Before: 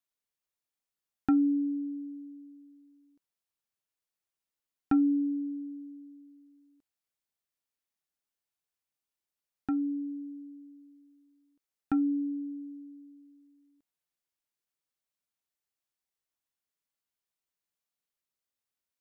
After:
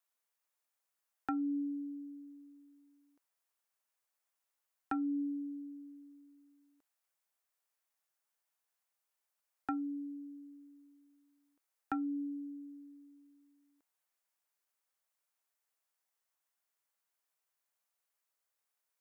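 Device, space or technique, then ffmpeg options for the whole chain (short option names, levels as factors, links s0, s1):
DJ mixer with the lows and highs turned down: -filter_complex "[0:a]acrossover=split=490 2200:gain=0.0631 1 0.141[s0][s1][s2];[s0][s1][s2]amix=inputs=3:normalize=0,alimiter=level_in=2.37:limit=0.0631:level=0:latency=1:release=285,volume=0.422,bass=f=250:g=7,treble=f=4000:g=15,volume=2.11"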